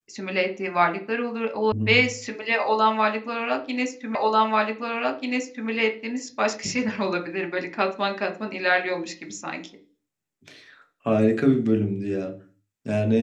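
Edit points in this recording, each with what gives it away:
1.72 sound cut off
4.15 repeat of the last 1.54 s

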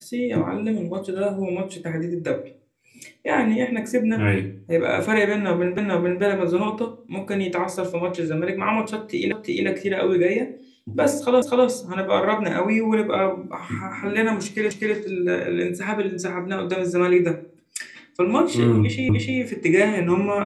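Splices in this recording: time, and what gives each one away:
5.78 repeat of the last 0.44 s
9.32 repeat of the last 0.35 s
11.42 repeat of the last 0.25 s
14.71 repeat of the last 0.25 s
19.09 repeat of the last 0.3 s

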